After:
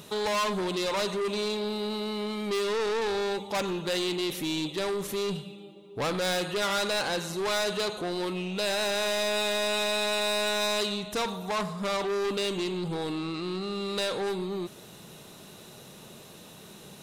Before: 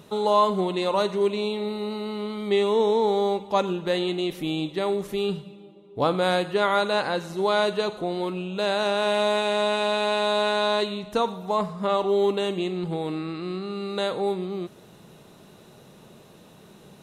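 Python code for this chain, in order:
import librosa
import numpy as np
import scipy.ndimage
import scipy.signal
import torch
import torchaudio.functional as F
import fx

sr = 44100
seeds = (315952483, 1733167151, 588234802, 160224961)

y = 10.0 ** (-27.0 / 20.0) * np.tanh(x / 10.0 ** (-27.0 / 20.0))
y = fx.high_shelf(y, sr, hz=2300.0, db=9.5)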